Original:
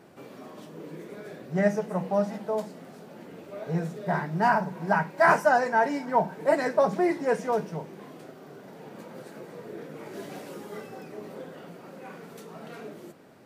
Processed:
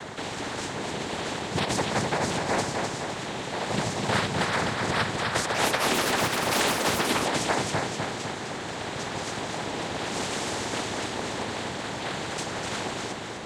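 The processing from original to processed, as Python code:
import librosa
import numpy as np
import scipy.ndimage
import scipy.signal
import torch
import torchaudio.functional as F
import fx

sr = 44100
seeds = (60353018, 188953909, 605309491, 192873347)

y = fx.over_compress(x, sr, threshold_db=-25.0, ratio=-0.5)
y = fx.noise_vocoder(y, sr, seeds[0], bands=6)
y = fx.echo_feedback(y, sr, ms=253, feedback_pct=40, wet_db=-7)
y = fx.echo_pitch(y, sr, ms=325, semitones=6, count=3, db_per_echo=-6.0, at=(5.22, 7.64))
y = fx.spectral_comp(y, sr, ratio=2.0)
y = y * 10.0 ** (1.5 / 20.0)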